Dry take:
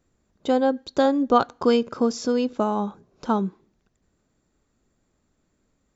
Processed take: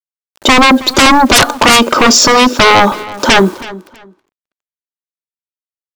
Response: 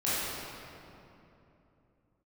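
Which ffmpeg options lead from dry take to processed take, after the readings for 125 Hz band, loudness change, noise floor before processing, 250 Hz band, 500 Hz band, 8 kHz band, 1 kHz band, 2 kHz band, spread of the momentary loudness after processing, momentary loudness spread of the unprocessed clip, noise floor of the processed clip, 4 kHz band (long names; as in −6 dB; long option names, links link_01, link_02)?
+16.0 dB, +15.5 dB, −72 dBFS, +11.5 dB, +9.5 dB, can't be measured, +17.0 dB, +28.0 dB, 9 LU, 11 LU, below −85 dBFS, +27.0 dB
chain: -filter_complex "[0:a]highpass=340,bandreject=frequency=2100:width=21,aecho=1:1:3.3:0.43,asplit=2[link_01][link_02];[link_02]alimiter=limit=-13.5dB:level=0:latency=1,volume=0.5dB[link_03];[link_01][link_03]amix=inputs=2:normalize=0,acrusher=bits=8:mix=0:aa=0.000001,aeval=exprs='0.841*sin(PI/2*8.91*val(0)/0.841)':channel_layout=same,asplit=2[link_04][link_05];[link_05]adelay=323,lowpass=frequency=4500:poles=1,volume=-18dB,asplit=2[link_06][link_07];[link_07]adelay=323,lowpass=frequency=4500:poles=1,volume=0.23[link_08];[link_06][link_08]amix=inputs=2:normalize=0[link_09];[link_04][link_09]amix=inputs=2:normalize=0,volume=-1dB"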